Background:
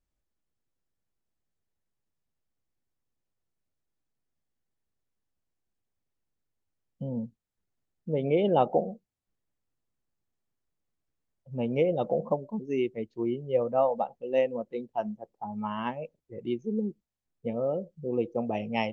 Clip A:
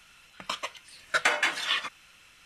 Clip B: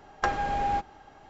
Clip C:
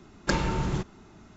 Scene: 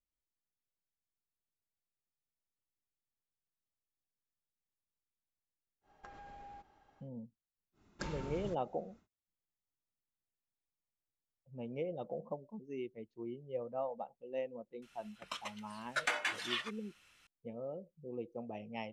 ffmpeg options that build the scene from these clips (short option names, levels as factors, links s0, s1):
-filter_complex "[0:a]volume=0.2[s0];[2:a]acompressor=threshold=0.0224:ratio=6:attack=3.2:release=140:knee=1:detection=peak,atrim=end=1.29,asetpts=PTS-STARTPTS,volume=0.15,afade=t=in:d=0.1,afade=t=out:st=1.19:d=0.1,adelay=256221S[s1];[3:a]atrim=end=1.36,asetpts=PTS-STARTPTS,volume=0.15,afade=t=in:d=0.1,afade=t=out:st=1.26:d=0.1,adelay=7720[s2];[1:a]atrim=end=2.45,asetpts=PTS-STARTPTS,volume=0.316,afade=t=in:d=0.004:c=hsin,afade=t=out:st=2.446:d=0.004:c=hsin,adelay=14820[s3];[s0][s1][s2][s3]amix=inputs=4:normalize=0"